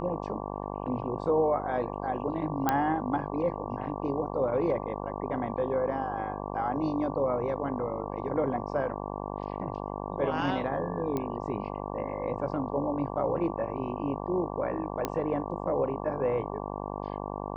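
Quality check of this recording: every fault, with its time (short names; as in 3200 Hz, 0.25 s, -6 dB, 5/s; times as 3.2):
buzz 50 Hz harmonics 23 -36 dBFS
2.69 pop -11 dBFS
11.17 pop -19 dBFS
15.05 pop -14 dBFS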